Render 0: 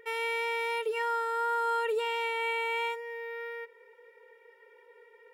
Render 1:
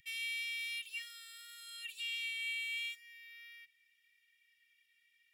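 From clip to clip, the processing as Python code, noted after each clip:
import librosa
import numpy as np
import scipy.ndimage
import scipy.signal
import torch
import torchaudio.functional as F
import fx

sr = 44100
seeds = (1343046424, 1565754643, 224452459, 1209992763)

y = scipy.signal.sosfilt(scipy.signal.cheby2(4, 60, [370.0, 1100.0], 'bandstop', fs=sr, output='sos'), x)
y = y * 10.0 ** (1.0 / 20.0)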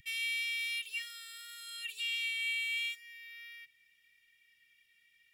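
y = fx.low_shelf(x, sr, hz=480.0, db=10.0)
y = y * 10.0 ** (4.0 / 20.0)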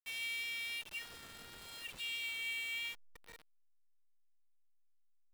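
y = fx.delta_hold(x, sr, step_db=-42.0)
y = y * 10.0 ** (-5.0 / 20.0)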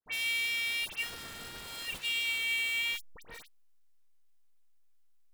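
y = fx.dispersion(x, sr, late='highs', ms=66.0, hz=2200.0)
y = y * 10.0 ** (8.5 / 20.0)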